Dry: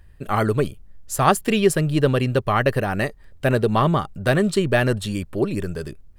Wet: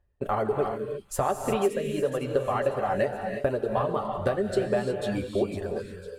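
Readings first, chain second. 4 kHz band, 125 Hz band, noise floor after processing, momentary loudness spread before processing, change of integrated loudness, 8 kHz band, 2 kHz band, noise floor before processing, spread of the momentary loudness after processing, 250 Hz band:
-12.0 dB, -13.0 dB, -48 dBFS, 9 LU, -7.0 dB, -10.0 dB, -11.5 dB, -47 dBFS, 4 LU, -9.5 dB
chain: ending faded out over 0.68 s; gate -34 dBFS, range -20 dB; reverb removal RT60 1.4 s; EQ curve 230 Hz 0 dB, 570 Hz +11 dB, 1600 Hz 0 dB, 13000 Hz -8 dB; compressor 6:1, threshold -23 dBFS, peak gain reduction 17 dB; notch comb 160 Hz; thin delay 0.502 s, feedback 48%, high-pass 4100 Hz, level -8 dB; non-linear reverb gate 0.38 s rising, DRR 3.5 dB

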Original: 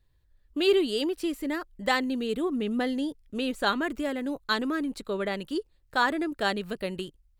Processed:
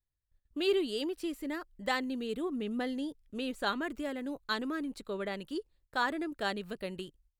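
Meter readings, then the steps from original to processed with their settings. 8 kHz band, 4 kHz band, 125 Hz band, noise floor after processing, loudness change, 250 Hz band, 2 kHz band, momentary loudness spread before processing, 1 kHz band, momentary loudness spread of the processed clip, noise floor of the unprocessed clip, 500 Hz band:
-6.5 dB, -6.5 dB, n/a, -84 dBFS, -6.5 dB, -6.5 dB, -6.5 dB, 9 LU, -6.5 dB, 9 LU, -65 dBFS, -6.5 dB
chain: gate -59 dBFS, range -15 dB; gain -6.5 dB

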